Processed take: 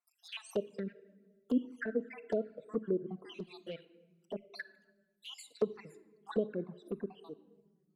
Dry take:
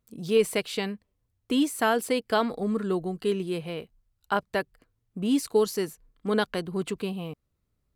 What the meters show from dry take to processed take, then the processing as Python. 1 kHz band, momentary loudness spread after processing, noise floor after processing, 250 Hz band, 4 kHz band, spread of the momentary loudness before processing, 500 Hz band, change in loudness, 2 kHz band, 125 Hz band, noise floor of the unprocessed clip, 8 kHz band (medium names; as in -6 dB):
-21.5 dB, 15 LU, -77 dBFS, -10.5 dB, -15.5 dB, 13 LU, -10.5 dB, -11.5 dB, -14.5 dB, -12.0 dB, -77 dBFS, -20.0 dB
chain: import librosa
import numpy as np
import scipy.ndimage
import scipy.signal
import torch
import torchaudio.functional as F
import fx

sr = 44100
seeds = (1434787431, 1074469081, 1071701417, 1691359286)

y = fx.spec_dropout(x, sr, seeds[0], share_pct=71)
y = scipy.signal.sosfilt(scipy.signal.butter(4, 190.0, 'highpass', fs=sr, output='sos'), y)
y = fx.env_lowpass_down(y, sr, base_hz=630.0, full_db=-26.5)
y = fx.room_shoebox(y, sr, seeds[1], volume_m3=1000.0, walls='mixed', distance_m=0.34)
y = fx.env_flanger(y, sr, rest_ms=5.7, full_db=-25.5)
y = F.gain(torch.from_numpy(y), -2.0).numpy()